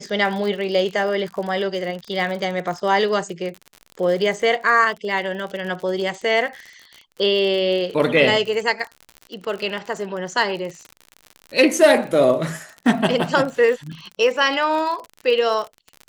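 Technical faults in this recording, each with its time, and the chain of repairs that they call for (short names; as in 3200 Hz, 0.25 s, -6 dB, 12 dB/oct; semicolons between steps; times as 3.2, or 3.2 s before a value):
crackle 51/s -28 dBFS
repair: de-click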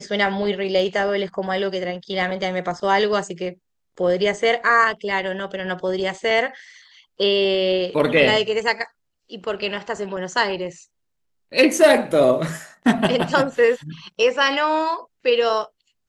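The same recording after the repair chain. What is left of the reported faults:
none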